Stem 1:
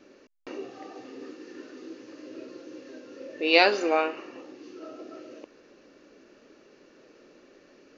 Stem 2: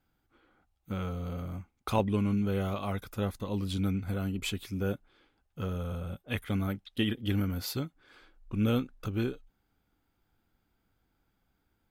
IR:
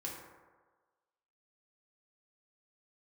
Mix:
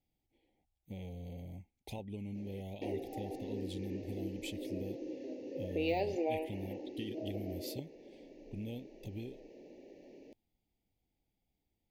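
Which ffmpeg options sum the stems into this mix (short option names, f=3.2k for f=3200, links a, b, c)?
-filter_complex "[0:a]deesser=0.6,equalizer=f=5.1k:t=o:w=2.8:g=-11,acompressor=threshold=-37dB:ratio=2.5,adelay=2350,volume=1.5dB[a];[1:a]acompressor=threshold=-31dB:ratio=6,volume=-8.5dB[b];[a][b]amix=inputs=2:normalize=0,asuperstop=centerf=1300:order=8:qfactor=1.2"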